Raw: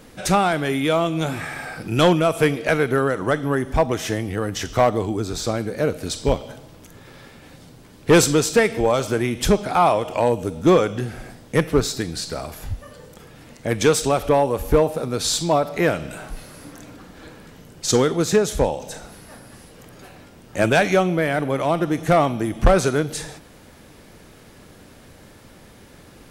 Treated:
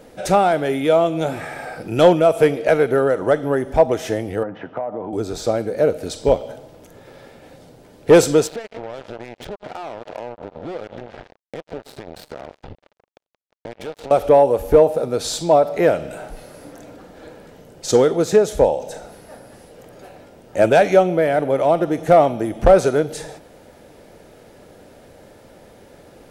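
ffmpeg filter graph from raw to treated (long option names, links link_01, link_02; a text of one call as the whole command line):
ffmpeg -i in.wav -filter_complex "[0:a]asettb=1/sr,asplit=3[link_01][link_02][link_03];[link_01]atrim=end=4.434[link_04];[link_02]atrim=start=4.43:end=5.13,asetpts=PTS-STARTPTS,afade=type=in:duration=0.004:curve=qsin,afade=type=out:start_time=0.696:duration=0.004:curve=qsin,highpass=frequency=130:width=0.5412,highpass=frequency=130:width=1.3066,equalizer=frequency=410:width_type=q:width=4:gain=-7,equalizer=frequency=930:width_type=q:width=4:gain=4,equalizer=frequency=2000:width_type=q:width=4:gain=-5,lowpass=frequency=2100:width=0.5412,lowpass=frequency=2100:width=1.3066,acompressor=threshold=-25dB:ratio=16:attack=3.2:release=140:knee=1:detection=peak[link_05];[link_03]atrim=start=5.126[link_06];[link_04][link_05]acrossfade=duration=0.004:curve1=hsin:curve2=qsin[link_07];[link_07][link_06]acrossfade=duration=0.004:curve1=qsin:curve2=hsin,asettb=1/sr,asplit=3[link_08][link_09][link_10];[link_08]atrim=end=8.474[link_11];[link_09]atrim=start=8.47:end=14.11,asetpts=PTS-STARTPTS,afade=type=in:duration=0.004:curve=qsin,afade=type=out:start_time=5.636:duration=0.004:curve=qsin,lowpass=frequency=3900:width=0.5412,lowpass=frequency=3900:width=1.3066,acompressor=threshold=-30dB:ratio=12:attack=3.2:release=140:knee=1:detection=peak,acrusher=bits=4:mix=0:aa=0.5[link_12];[link_10]atrim=start=14.106[link_13];[link_11][link_12]acrossfade=duration=0.004:curve1=hsin:curve2=qsin[link_14];[link_14][link_13]acrossfade=duration=0.004:curve1=qsin:curve2=hsin,equalizer=frequency=570:width_type=o:width=1.5:gain=11,bandreject=frequency=1100:width=9.7,volume=-4dB" out.wav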